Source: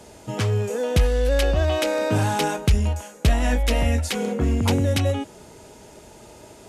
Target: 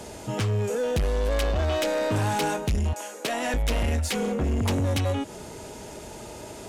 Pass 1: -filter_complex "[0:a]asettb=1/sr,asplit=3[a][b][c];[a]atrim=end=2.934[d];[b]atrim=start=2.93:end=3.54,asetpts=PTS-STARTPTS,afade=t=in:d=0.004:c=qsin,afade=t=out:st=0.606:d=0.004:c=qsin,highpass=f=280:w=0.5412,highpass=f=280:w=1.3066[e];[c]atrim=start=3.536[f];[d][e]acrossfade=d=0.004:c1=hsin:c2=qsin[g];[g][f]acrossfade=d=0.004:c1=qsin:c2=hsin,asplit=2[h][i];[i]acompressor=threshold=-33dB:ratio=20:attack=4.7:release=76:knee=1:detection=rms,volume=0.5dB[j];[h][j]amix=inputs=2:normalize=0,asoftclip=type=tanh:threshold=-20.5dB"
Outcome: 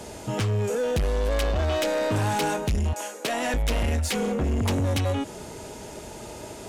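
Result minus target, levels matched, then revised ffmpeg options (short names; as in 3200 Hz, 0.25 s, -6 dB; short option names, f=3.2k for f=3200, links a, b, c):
compressor: peak gain reduction -9 dB
-filter_complex "[0:a]asettb=1/sr,asplit=3[a][b][c];[a]atrim=end=2.934[d];[b]atrim=start=2.93:end=3.54,asetpts=PTS-STARTPTS,afade=t=in:d=0.004:c=qsin,afade=t=out:st=0.606:d=0.004:c=qsin,highpass=f=280:w=0.5412,highpass=f=280:w=1.3066[e];[c]atrim=start=3.536[f];[d][e]acrossfade=d=0.004:c1=hsin:c2=qsin[g];[g][f]acrossfade=d=0.004:c1=qsin:c2=hsin,asplit=2[h][i];[i]acompressor=threshold=-42.5dB:ratio=20:attack=4.7:release=76:knee=1:detection=rms,volume=0.5dB[j];[h][j]amix=inputs=2:normalize=0,asoftclip=type=tanh:threshold=-20.5dB"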